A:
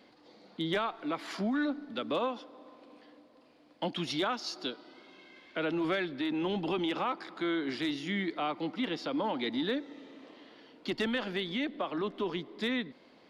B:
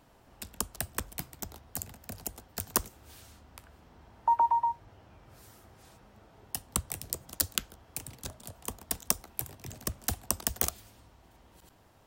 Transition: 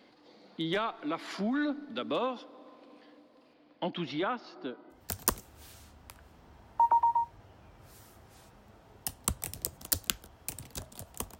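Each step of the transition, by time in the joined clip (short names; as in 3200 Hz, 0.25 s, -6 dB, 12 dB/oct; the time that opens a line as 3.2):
A
3.53–5.04 LPF 4800 Hz -> 1100 Hz
4.97 switch to B from 2.45 s, crossfade 0.14 s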